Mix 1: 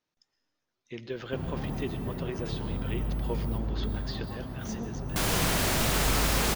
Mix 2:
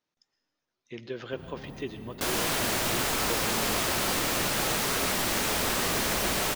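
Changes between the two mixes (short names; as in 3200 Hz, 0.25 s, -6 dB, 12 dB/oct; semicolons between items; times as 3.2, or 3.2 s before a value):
first sound -9.0 dB; second sound: entry -2.95 s; master: add low shelf 77 Hz -7.5 dB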